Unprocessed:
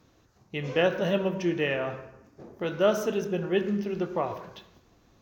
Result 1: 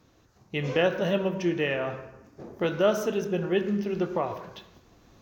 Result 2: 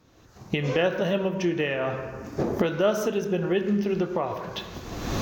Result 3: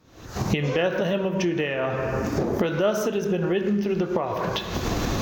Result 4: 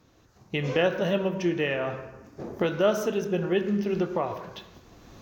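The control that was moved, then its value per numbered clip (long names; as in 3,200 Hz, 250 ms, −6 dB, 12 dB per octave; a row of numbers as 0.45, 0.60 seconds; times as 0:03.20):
camcorder AGC, rising by: 5.2, 36, 89, 13 dB per second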